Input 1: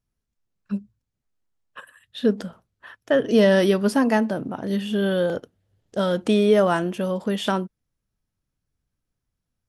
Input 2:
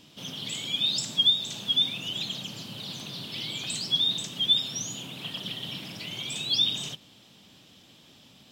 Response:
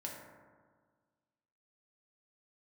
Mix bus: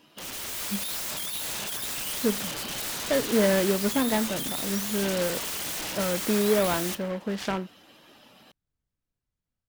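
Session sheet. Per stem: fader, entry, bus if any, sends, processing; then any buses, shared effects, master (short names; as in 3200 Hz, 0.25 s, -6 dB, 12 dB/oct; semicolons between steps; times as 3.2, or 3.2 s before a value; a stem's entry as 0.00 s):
-11.0 dB, 0.00 s, no send, noise-modulated delay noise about 1200 Hz, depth 0.06 ms
-5.5 dB, 0.00 s, send -9 dB, per-bin expansion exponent 1.5; overdrive pedal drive 24 dB, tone 5700 Hz, clips at -13.5 dBFS; wrapped overs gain 29 dB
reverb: on, RT60 1.6 s, pre-delay 3 ms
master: AGC gain up to 5 dB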